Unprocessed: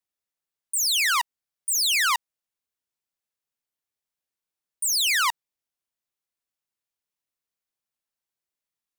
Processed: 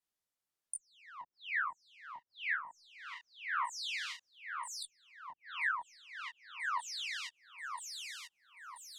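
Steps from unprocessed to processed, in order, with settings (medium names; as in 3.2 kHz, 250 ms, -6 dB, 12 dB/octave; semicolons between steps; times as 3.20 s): peaking EQ 2.4 kHz -2 dB 0.46 oct; echo whose repeats swap between lows and highs 492 ms, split 1.8 kHz, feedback 67%, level -2.5 dB; low-pass that closes with the level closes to 320 Hz, closed at -22.5 dBFS; detune thickener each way 37 cents; trim +2.5 dB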